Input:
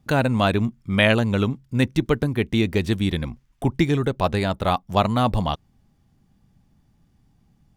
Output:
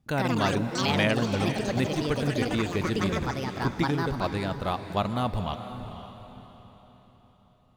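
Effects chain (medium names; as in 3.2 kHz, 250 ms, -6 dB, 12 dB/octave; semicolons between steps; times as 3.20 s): ever faster or slower copies 112 ms, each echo +5 st, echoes 3; echo that smears into a reverb 498 ms, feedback 42%, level -10 dB; trim -8 dB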